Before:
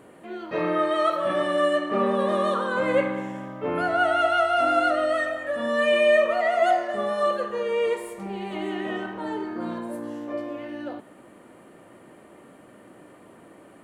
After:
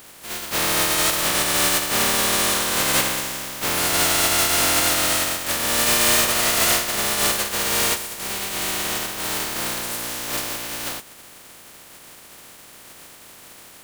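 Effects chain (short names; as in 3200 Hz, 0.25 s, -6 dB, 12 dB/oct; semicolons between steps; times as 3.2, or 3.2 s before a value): spectral contrast lowered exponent 0.16; soft clip -18.5 dBFS, distortion -13 dB; gain +5.5 dB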